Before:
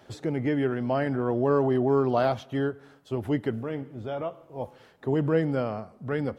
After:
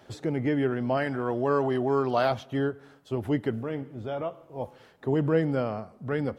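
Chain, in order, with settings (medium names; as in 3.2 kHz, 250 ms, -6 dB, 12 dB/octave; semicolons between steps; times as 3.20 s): 0.97–2.31 s: tilt shelf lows -4.5 dB, about 770 Hz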